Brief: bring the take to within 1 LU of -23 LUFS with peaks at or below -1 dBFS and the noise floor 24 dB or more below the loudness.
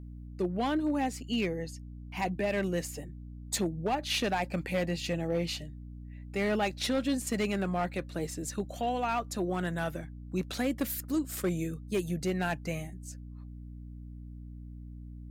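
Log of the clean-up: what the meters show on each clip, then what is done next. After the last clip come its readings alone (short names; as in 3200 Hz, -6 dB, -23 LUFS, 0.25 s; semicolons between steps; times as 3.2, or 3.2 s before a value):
clipped 0.9%; flat tops at -23.0 dBFS; hum 60 Hz; harmonics up to 300 Hz; hum level -42 dBFS; loudness -32.5 LUFS; peak -23.0 dBFS; loudness target -23.0 LUFS
-> clip repair -23 dBFS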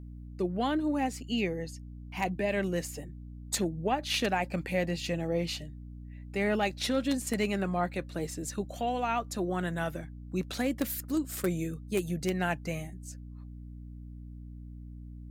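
clipped 0.0%; hum 60 Hz; harmonics up to 300 Hz; hum level -42 dBFS
-> notches 60/120/180/240/300 Hz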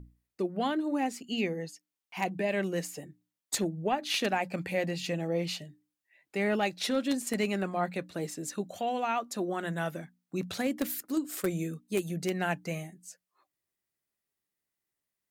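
hum none; loudness -32.5 LUFS; peak -13.5 dBFS; loudness target -23.0 LUFS
-> gain +9.5 dB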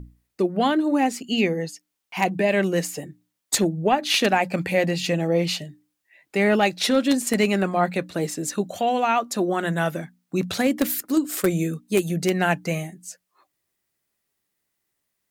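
loudness -23.0 LUFS; peak -4.0 dBFS; noise floor -78 dBFS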